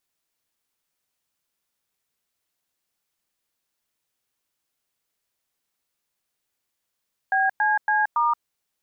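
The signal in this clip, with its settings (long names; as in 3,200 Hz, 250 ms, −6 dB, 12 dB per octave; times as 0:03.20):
touch tones "BCC*", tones 176 ms, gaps 104 ms, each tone −20.5 dBFS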